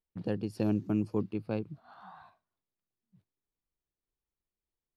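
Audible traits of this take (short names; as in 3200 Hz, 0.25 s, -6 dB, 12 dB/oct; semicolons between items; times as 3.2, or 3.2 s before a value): noise floor -94 dBFS; spectral tilt -8.0 dB/oct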